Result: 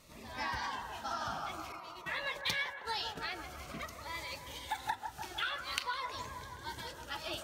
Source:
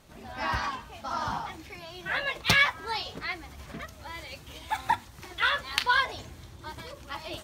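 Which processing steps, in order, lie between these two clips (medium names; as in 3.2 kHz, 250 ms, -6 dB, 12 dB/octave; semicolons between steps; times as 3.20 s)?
compression 12:1, threshold -31 dBFS, peak gain reduction 14.5 dB; 1.72–3.25 s: gate -41 dBFS, range -15 dB; bass shelf 480 Hz -7 dB; feedback echo behind a band-pass 158 ms, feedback 74%, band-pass 720 Hz, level -6 dB; Shepard-style phaser falling 0.5 Hz; trim +1 dB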